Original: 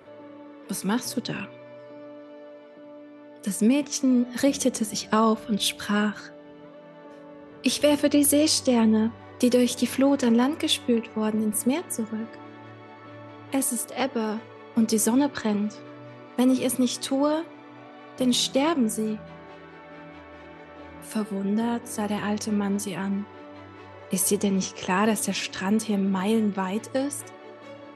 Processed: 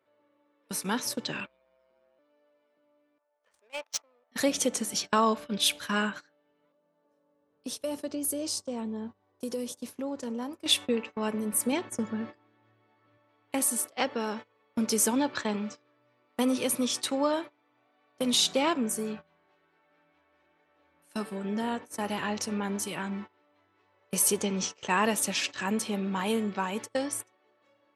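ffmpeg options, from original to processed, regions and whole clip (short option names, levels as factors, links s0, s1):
-filter_complex "[0:a]asettb=1/sr,asplit=3[s0][s1][s2];[s0]atrim=end=1.464[s3];[s1]atrim=start=1.46:end=2.19,asetpts=PTS-STARTPTS,afade=t=in:d=0.004:c=qsin,afade=t=out:st=0.726:d=0.004:c=qsin,aeval=exprs='val(0)*sin(2*PI*65*n/s)':c=same,asplit=2[s4][s5];[s5]adelay=15,volume=0.668[s6];[s4][s6]amix=inputs=2:normalize=0,atrim=end_sample=32193[s7];[s2]atrim=start=2.186[s8];[s3][s7]acrossfade=d=0.004:c1=hsin:c2=qsin[s9];[s9][s8]acrossfade=d=0.004:c1=qsin:c2=hsin,asettb=1/sr,asplit=3[s10][s11][s12];[s10]atrim=end=3.184[s13];[s11]atrim=start=3.18:end=4.32,asetpts=PTS-STARTPTS,afade=t=in:d=0.004:c=qsin,afade=t=out:st=1.136:d=0.004:c=qsin,highpass=f=630:w=0.5412,highpass=f=630:w=1.3066,adynamicsmooth=sensitivity=5.5:basefreq=880[s14];[s12]atrim=start=4.316[s15];[s13][s14]acrossfade=d=0.004:c1=hsin:c2=qsin[s16];[s16][s15]acrossfade=d=0.004:c1=qsin:c2=hsin,asettb=1/sr,asplit=3[s17][s18][s19];[s17]atrim=end=6.724[s20];[s18]atrim=start=6.72:end=10.66,asetpts=PTS-STARTPTS,afade=t=in:d=0.004:c=qsin,afade=t=out:st=3.936:d=0.004:c=qsin,equalizer=f=2300:t=o:w=1.9:g=-11,acompressor=threshold=0.0112:ratio=1.5:attack=3.2:release=140:knee=1:detection=peak[s21];[s19]atrim=start=10.656[s22];[s20][s21]acrossfade=d=0.004:c1=hsin:c2=qsin[s23];[s23][s22]acrossfade=d=0.004:c1=qsin:c2=hsin,asettb=1/sr,asplit=3[s24][s25][s26];[s24]atrim=end=11.724[s27];[s25]atrim=start=11.72:end=13.18,asetpts=PTS-STARTPTS,afade=t=in:d=0.004:c=qsin,afade=t=out:st=1.456:d=0.004:c=qsin,lowpass=8100,lowshelf=f=210:g=11[s28];[s26]atrim=start=13.176[s29];[s27][s28]acrossfade=d=0.004:c1=hsin:c2=qsin[s30];[s30][s29]acrossfade=d=0.004:c1=qsin:c2=hsin,agate=range=0.0891:threshold=0.0224:ratio=16:detection=peak,lowshelf=f=400:g=-9.5"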